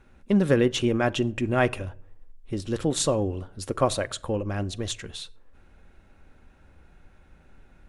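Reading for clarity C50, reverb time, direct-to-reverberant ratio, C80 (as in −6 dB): 24.0 dB, non-exponential decay, 11.5 dB, 26.5 dB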